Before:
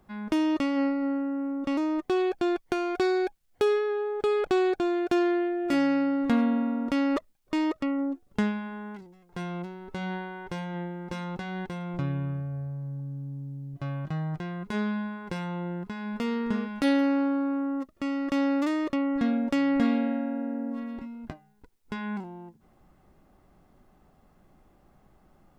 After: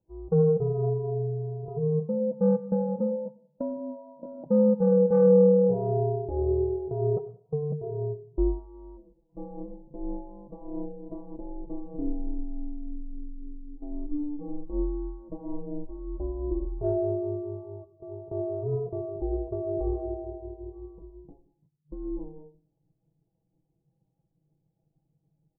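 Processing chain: gliding pitch shift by -2.5 st starting unshifted; inverse Chebyshev low-pass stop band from 1600 Hz, stop band 40 dB; notches 60/120/180/240/300 Hz; comb 6.1 ms, depth 58%; soft clip -19 dBFS, distortion -18 dB; ring modulator 150 Hz; feedback echo 96 ms, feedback 53%, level -19.5 dB; on a send at -10 dB: reverb RT60 0.65 s, pre-delay 76 ms; on the sum: spectral expander 1.5:1; gain +8 dB

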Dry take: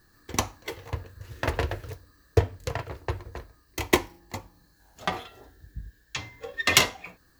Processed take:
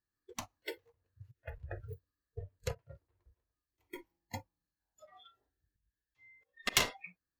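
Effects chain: added harmonics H 3 -26 dB, 6 -24 dB, 7 -27 dB, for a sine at -2 dBFS; auto swell 0.231 s; spectral noise reduction 26 dB

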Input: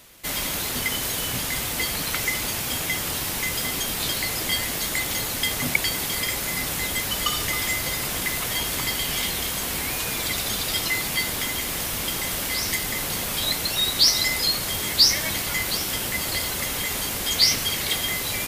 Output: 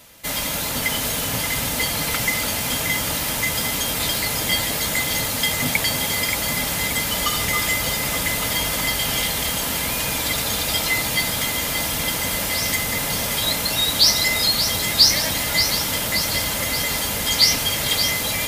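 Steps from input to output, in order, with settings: bell 730 Hz +3.5 dB 0.48 oct; notch comb 370 Hz; on a send: echo with dull and thin repeats by turns 0.289 s, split 1500 Hz, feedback 78%, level -5.5 dB; on the sum: gain +3.5 dB

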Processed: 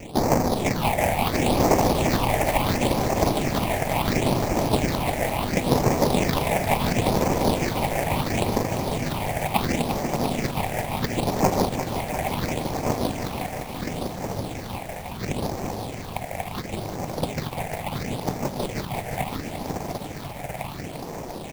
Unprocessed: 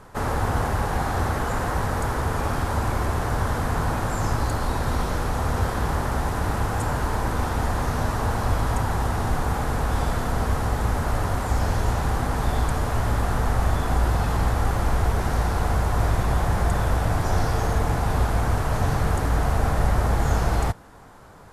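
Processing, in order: bell 430 Hz -14 dB 0.69 oct; negative-ratio compressor -28 dBFS, ratio -0.5; HPF 160 Hz 12 dB/oct; notch comb 1400 Hz; tapped delay 75/148/186 ms -12.5/-3/-6 dB; sample-rate reducer 1500 Hz, jitter 20%; phaser stages 6, 0.72 Hz, lowest notch 300–3400 Hz; lo-fi delay 0.347 s, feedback 80%, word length 8-bit, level -8.5 dB; gain +8.5 dB

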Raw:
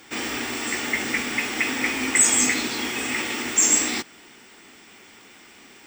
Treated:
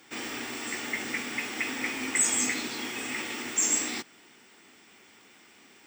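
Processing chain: HPF 88 Hz; gain -7.5 dB

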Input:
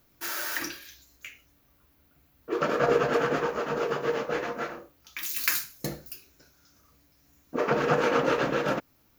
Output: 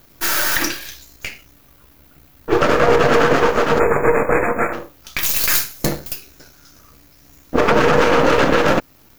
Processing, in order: half-wave gain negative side -12 dB; spectral delete 3.79–4.73, 2600–6800 Hz; maximiser +18.5 dB; gain -1 dB

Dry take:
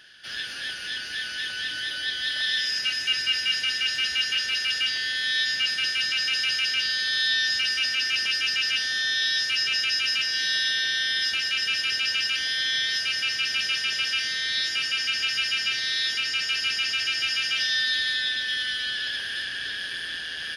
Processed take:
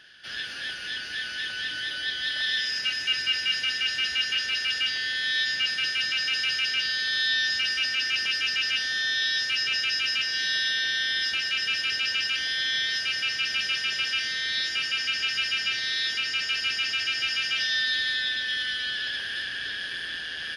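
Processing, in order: high shelf 7200 Hz -9 dB

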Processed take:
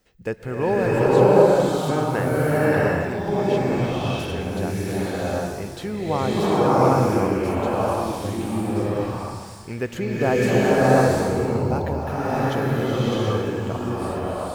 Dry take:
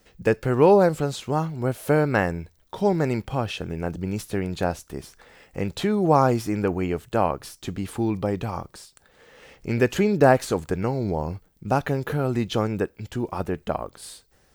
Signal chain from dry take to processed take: bloom reverb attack 0.71 s, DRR -9.5 dB; gain -7 dB

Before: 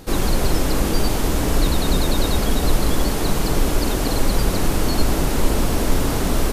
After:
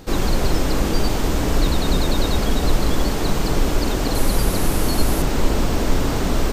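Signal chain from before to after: bell 11000 Hz -10.5 dB 0.47 oct, from 4.15 s +4 dB, from 5.22 s -12.5 dB

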